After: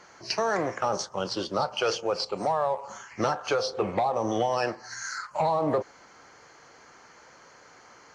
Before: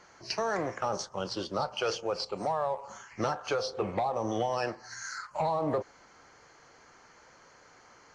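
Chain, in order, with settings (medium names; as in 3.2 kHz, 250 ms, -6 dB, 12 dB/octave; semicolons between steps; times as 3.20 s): bass shelf 66 Hz -10 dB; trim +4.5 dB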